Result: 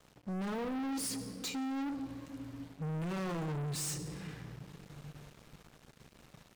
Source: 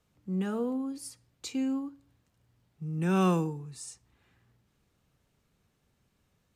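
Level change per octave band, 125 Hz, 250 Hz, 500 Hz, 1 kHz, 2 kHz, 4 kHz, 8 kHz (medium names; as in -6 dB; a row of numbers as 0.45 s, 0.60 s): -4.5 dB, -6.0 dB, -7.5 dB, -5.5 dB, -2.5 dB, +2.5 dB, +4.0 dB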